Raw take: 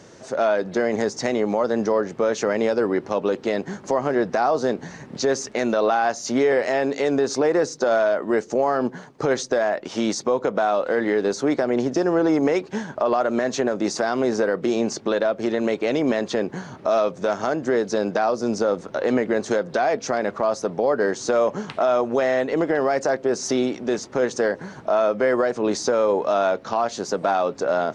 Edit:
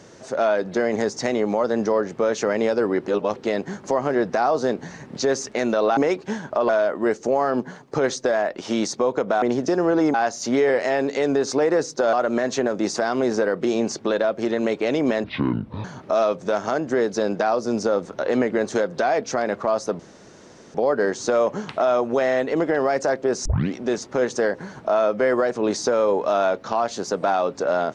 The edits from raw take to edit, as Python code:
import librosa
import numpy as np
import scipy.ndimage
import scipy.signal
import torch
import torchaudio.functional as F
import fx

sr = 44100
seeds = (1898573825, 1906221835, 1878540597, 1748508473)

y = fx.edit(x, sr, fx.reverse_span(start_s=3.07, length_s=0.29),
    fx.swap(start_s=5.97, length_s=1.99, other_s=12.42, other_length_s=0.72),
    fx.cut(start_s=10.69, length_s=1.01),
    fx.speed_span(start_s=16.25, length_s=0.35, speed=0.58),
    fx.insert_room_tone(at_s=20.75, length_s=0.75),
    fx.tape_start(start_s=23.46, length_s=0.29), tone=tone)